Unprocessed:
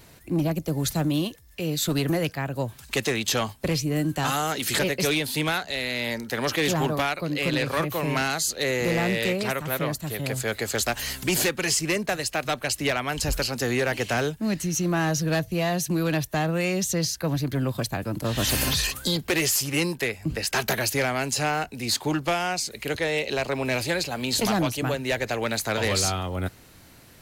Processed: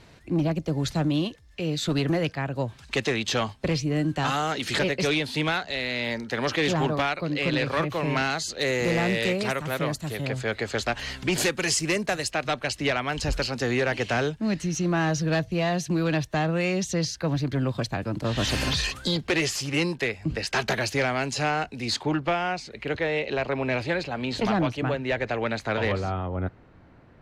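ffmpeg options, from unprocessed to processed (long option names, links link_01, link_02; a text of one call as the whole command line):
ffmpeg -i in.wav -af "asetnsamples=nb_out_samples=441:pad=0,asendcmd='8.59 lowpass f 8100;10.25 lowpass f 3900;11.38 lowpass f 9000;12.31 lowpass f 5100;22.03 lowpass f 2800;25.92 lowpass f 1400',lowpass=4900" out.wav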